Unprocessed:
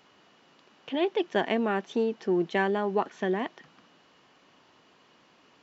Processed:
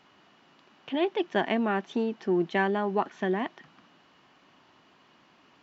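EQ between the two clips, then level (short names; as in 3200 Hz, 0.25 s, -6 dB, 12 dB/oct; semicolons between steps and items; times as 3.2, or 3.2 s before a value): LPF 4000 Hz 6 dB/oct; bell 480 Hz -6.5 dB 0.42 oct; +1.5 dB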